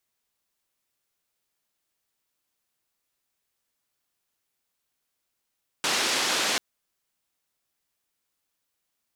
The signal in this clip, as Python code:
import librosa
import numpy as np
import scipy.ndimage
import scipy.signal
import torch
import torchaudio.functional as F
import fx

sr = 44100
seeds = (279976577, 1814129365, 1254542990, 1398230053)

y = fx.band_noise(sr, seeds[0], length_s=0.74, low_hz=250.0, high_hz=5600.0, level_db=-25.5)